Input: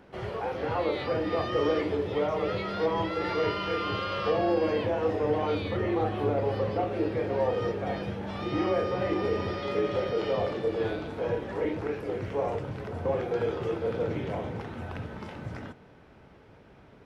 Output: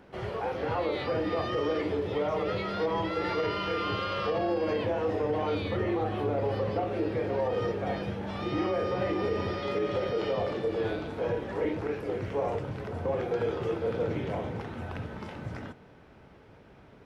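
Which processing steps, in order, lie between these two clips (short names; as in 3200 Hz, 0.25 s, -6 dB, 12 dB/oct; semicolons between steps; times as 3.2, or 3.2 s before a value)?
limiter -20.5 dBFS, peak gain reduction 5.5 dB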